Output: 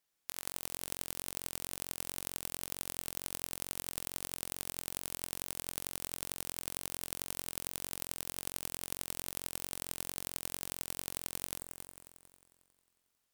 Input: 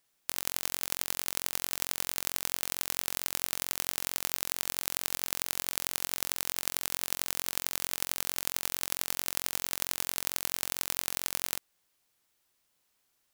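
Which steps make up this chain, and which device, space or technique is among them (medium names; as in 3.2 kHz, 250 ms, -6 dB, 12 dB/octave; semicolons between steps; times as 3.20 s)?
multi-head tape echo (multi-head delay 90 ms, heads all three, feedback 55%, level -12 dB; wow and flutter); trim -8 dB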